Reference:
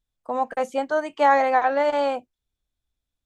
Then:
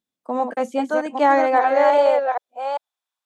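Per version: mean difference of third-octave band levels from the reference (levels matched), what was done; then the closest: 3.0 dB: chunks repeated in reverse 396 ms, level -5 dB; high-pass sweep 230 Hz -> 960 Hz, 1.08–3.09 s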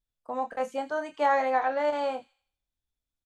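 1.0 dB: doubling 27 ms -7.5 dB; on a send: feedback echo behind a high-pass 83 ms, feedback 40%, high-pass 2.7 kHz, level -14 dB; on the sum: trim -7 dB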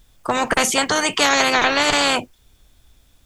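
14.0 dB: band-stop 4 kHz, Q 23; spectrum-flattening compressor 4:1; trim +4 dB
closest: second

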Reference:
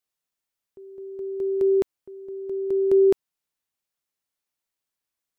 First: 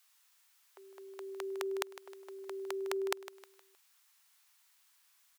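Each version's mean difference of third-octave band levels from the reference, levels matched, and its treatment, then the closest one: 11.0 dB: high-pass 910 Hz 24 dB/octave; compression 2:1, threshold -54 dBFS, peak gain reduction 8.5 dB; feedback delay 156 ms, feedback 39%, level -14 dB; trim +17 dB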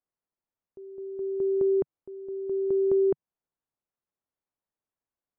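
1.0 dB: low-pass 1.1 kHz 12 dB/octave; compression 3:1, threshold -23 dBFS, peak gain reduction 6.5 dB; dynamic bell 150 Hz, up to +5 dB, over -45 dBFS, Q 1.6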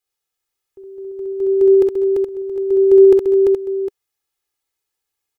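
2.5 dB: dynamic bell 400 Hz, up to +3 dB, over -27 dBFS, Q 4.1; comb 2.4 ms, depth 91%; multi-tap echo 50/65/196/342/421/756 ms -14.5/-3.5/-15.5/-3/-7/-13 dB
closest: second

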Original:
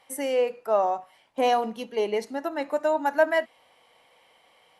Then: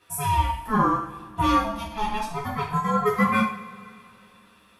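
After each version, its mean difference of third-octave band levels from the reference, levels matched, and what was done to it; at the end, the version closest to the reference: 12.5 dB: treble shelf 11 kHz +9.5 dB; ring modulator 430 Hz; two-slope reverb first 0.49 s, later 2.7 s, from -20 dB, DRR -5.5 dB; trim -2 dB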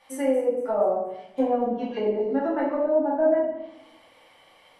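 8.0 dB: low-pass that closes with the level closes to 530 Hz, closed at -23 dBFS; on a send: feedback echo behind a high-pass 236 ms, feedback 41%, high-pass 4 kHz, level -15 dB; on the sum: simulated room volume 230 m³, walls mixed, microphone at 2.4 m; trim -3 dB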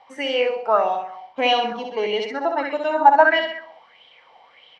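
5.0 dB: low-pass 5.5 kHz 24 dB/octave; on a send: feedback delay 64 ms, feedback 46%, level -4 dB; on the sum: sweeping bell 1.6 Hz 780–3400 Hz +15 dB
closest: third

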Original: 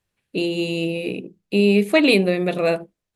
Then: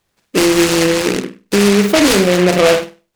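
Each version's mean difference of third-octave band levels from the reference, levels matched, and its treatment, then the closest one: 12.0 dB: bass shelf 200 Hz -7.5 dB; on a send: flutter echo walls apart 8.6 m, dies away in 0.31 s; on the sum: loudness maximiser +13.5 dB; delay time shaken by noise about 1.8 kHz, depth 0.1 ms; trim -1 dB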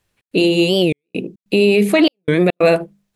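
7.0 dB: hum notches 50/100/150/200 Hz; peak limiter -13 dBFS, peak gain reduction 10.5 dB; trance gate "xx.xxxxxx.." 144 bpm -60 dB; warped record 45 rpm, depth 250 cents; trim +9 dB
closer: second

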